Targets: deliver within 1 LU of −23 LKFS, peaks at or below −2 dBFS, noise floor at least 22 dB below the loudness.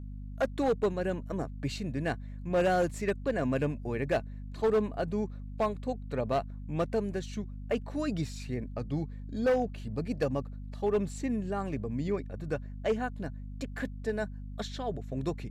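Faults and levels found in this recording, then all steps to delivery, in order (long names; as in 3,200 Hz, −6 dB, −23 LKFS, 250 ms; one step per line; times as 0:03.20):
share of clipped samples 1.1%; peaks flattened at −21.5 dBFS; mains hum 50 Hz; hum harmonics up to 250 Hz; level of the hum −38 dBFS; integrated loudness −33.0 LKFS; sample peak −21.5 dBFS; target loudness −23.0 LKFS
→ clipped peaks rebuilt −21.5 dBFS
mains-hum notches 50/100/150/200/250 Hz
level +10 dB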